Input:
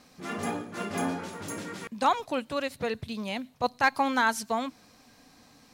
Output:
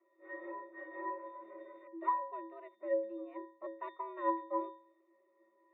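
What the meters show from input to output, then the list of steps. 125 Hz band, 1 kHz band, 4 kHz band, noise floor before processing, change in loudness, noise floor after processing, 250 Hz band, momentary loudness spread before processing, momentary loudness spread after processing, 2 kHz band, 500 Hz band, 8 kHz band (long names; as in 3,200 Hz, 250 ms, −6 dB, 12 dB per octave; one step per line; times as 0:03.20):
below −40 dB, −9.0 dB, below −30 dB, −59 dBFS, −10.0 dB, −73 dBFS, −12.5 dB, 12 LU, 15 LU, −19.5 dB, −6.5 dB, below −40 dB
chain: stylus tracing distortion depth 0.18 ms
resonances in every octave A, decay 0.46 s
single-sideband voice off tune +110 Hz 270–2,500 Hz
level +8 dB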